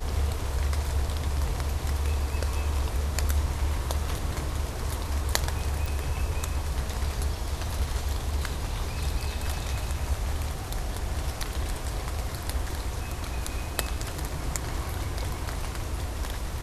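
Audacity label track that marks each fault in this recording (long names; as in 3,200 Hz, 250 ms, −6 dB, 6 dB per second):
5.860000	5.860000	click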